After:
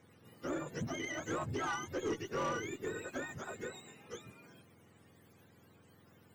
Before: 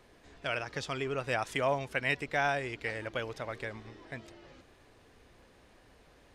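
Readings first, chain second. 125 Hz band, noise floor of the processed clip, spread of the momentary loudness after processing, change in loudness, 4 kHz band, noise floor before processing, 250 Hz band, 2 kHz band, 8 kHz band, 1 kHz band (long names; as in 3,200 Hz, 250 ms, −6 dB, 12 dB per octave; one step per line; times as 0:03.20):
−4.0 dB, −64 dBFS, 13 LU, −6.0 dB, −7.0 dB, −61 dBFS, +1.0 dB, −9.0 dB, +3.5 dB, −6.0 dB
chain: frequency axis turned over on the octave scale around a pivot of 910 Hz
tube saturation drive 29 dB, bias 0.2
level −1.5 dB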